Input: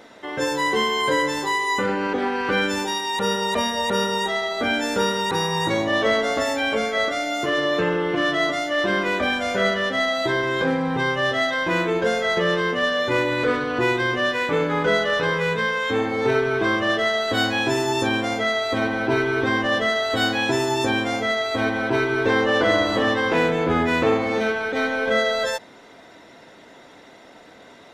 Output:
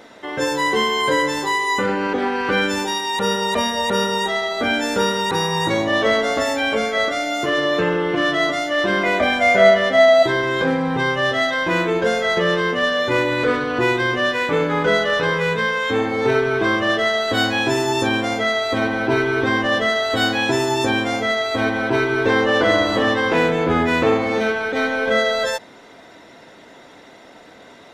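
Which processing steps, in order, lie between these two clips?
0:09.03–0:10.23: hollow resonant body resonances 670/2,100 Hz, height 13 dB
level +2.5 dB

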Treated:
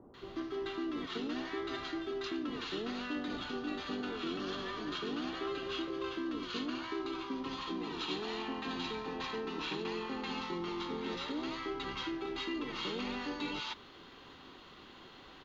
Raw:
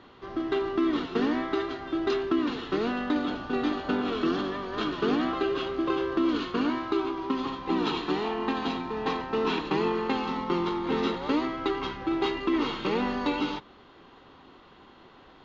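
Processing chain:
high-shelf EQ 2,800 Hz +10.5 dB
notch filter 5,400 Hz, Q 29
reversed playback
downward compressor 6 to 1, threshold −33 dBFS, peak gain reduction 12 dB
reversed playback
multiband delay without the direct sound lows, highs 140 ms, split 790 Hz
level −2 dB

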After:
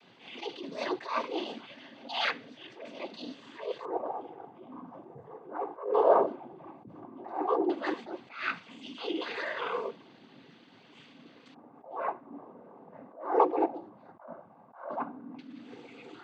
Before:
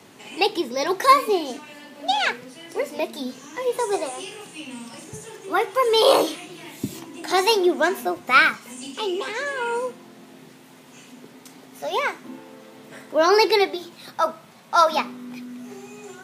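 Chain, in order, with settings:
high-shelf EQ 6,300 Hz −12 dB
auto-filter low-pass square 0.13 Hz 850–3,500 Hz
cochlear-implant simulation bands 16
level that may rise only so fast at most 120 dB per second
level −8.5 dB

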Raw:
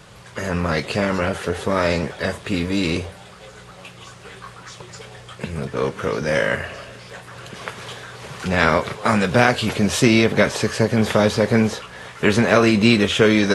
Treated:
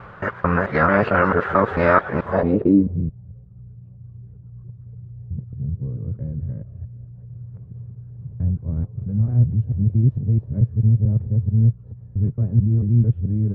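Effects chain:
reversed piece by piece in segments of 221 ms
low-pass filter sweep 1,400 Hz → 110 Hz, 0:02.24–0:03.10
level +2 dB

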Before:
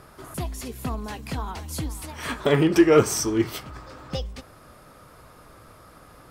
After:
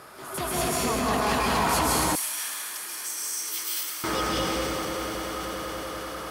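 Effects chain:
high-pass filter 520 Hz 6 dB per octave
compressor whose output falls as the input rises −34 dBFS, ratio −1
0:00.68–0:01.13: Butterworth low-pass 6,900 Hz
echo that builds up and dies away 97 ms, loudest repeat 8, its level −17.5 dB
dense smooth reverb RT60 3.7 s, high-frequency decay 0.45×, pre-delay 120 ms, DRR −7.5 dB
transient designer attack −4 dB, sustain +5 dB
0:02.15–0:04.04: first difference

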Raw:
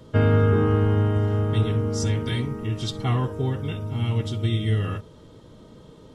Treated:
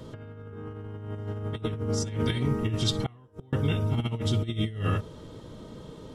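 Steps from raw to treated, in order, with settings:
0:03.06–0:03.53: gate with flip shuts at −23 dBFS, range −33 dB
compressor whose output falls as the input rises −27 dBFS, ratio −0.5
level −1.5 dB

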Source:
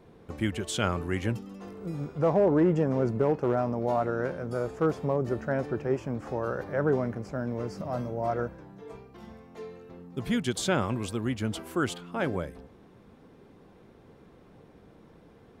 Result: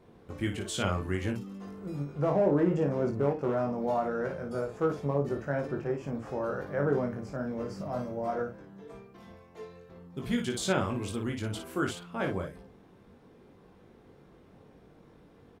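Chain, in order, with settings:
on a send: ambience of single reflections 21 ms −4 dB, 56 ms −6.5 dB
on the sum: every ending faded ahead of time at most 150 dB per second
level −4 dB

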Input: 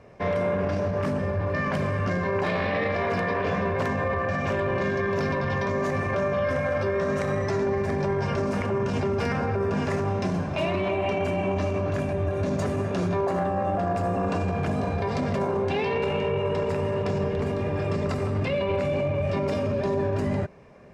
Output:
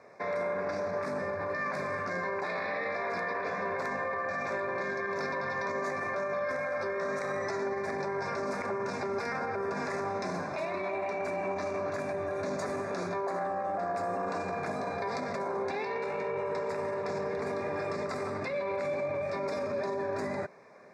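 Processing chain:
meter weighting curve A
brickwall limiter −25 dBFS, peak gain reduction 8.5 dB
Butterworth band-reject 3,000 Hz, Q 2.2

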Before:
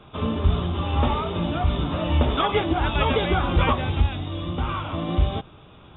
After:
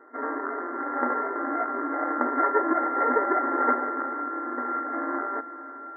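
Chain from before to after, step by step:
samples sorted by size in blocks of 32 samples
feedback delay with all-pass diffusion 481 ms, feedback 52%, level −14 dB
brick-wall band-pass 240–2,100 Hz

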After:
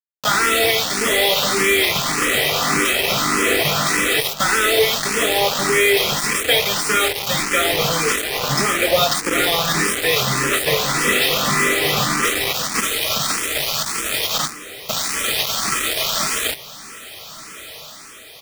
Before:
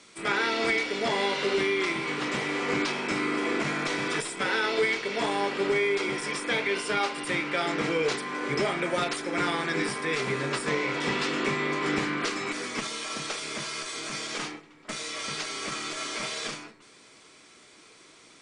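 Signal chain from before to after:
high-pass filter 54 Hz
high-shelf EQ 5,500 Hz +2 dB
comb filter 1.6 ms, depth 49%
dynamic equaliser 3,500 Hz, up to +6 dB, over −48 dBFS, Q 3.5
in parallel at −1 dB: brickwall limiter −21 dBFS, peak gain reduction 8 dB
on the sum: bit reduction 4 bits
on a send: feedback delay with all-pass diffusion 1,459 ms, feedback 51%, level −16 dB
on the sum: frequency shifter mixed with the dry sound +1.7 Hz
level +7 dB

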